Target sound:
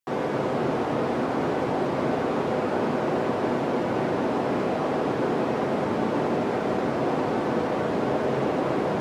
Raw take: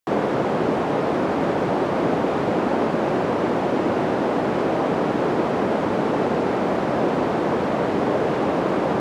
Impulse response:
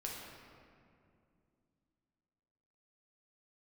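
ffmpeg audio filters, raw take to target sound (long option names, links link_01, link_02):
-filter_complex "[0:a]asplit=2[link_01][link_02];[1:a]atrim=start_sample=2205,highshelf=frequency=3900:gain=7.5,adelay=8[link_03];[link_02][link_03]afir=irnorm=-1:irlink=0,volume=0dB[link_04];[link_01][link_04]amix=inputs=2:normalize=0,volume=-7.5dB"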